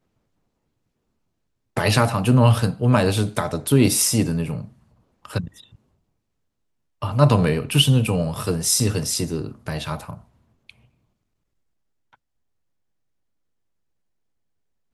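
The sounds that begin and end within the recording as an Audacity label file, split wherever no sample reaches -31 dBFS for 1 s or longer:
1.770000	5.480000	sound
7.020000	10.700000	sound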